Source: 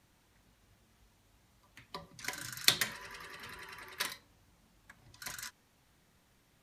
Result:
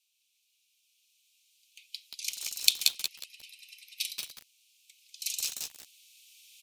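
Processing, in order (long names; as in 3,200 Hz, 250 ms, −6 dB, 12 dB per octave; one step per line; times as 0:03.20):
camcorder AGC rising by 5.4 dB per second
Butterworth high-pass 2,400 Hz 96 dB per octave
0:02.71–0:04.10: frequency shifter −43 Hz
on a send: single-tap delay 193 ms −9.5 dB
on the sum: feedback echo at a low word length 180 ms, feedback 35%, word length 6 bits, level −3 dB
level −2 dB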